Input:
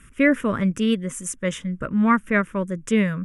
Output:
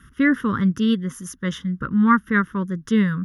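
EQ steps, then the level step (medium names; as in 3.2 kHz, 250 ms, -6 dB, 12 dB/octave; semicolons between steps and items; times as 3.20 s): high-pass 48 Hz; static phaser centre 2.4 kHz, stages 6; +3.5 dB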